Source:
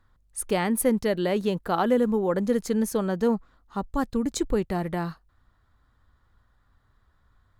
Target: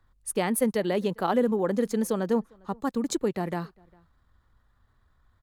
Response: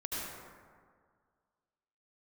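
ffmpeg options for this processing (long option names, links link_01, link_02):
-filter_complex "[0:a]equalizer=frequency=1400:width_type=o:width=0.21:gain=-2,acrossover=split=130[link_01][link_02];[link_01]acompressor=threshold=-54dB:ratio=8[link_03];[link_03][link_02]amix=inputs=2:normalize=0,atempo=1.4,asplit=2[link_04][link_05];[link_05]adelay=402.3,volume=-28dB,highshelf=frequency=4000:gain=-9.05[link_06];[link_04][link_06]amix=inputs=2:normalize=0,volume=-1dB"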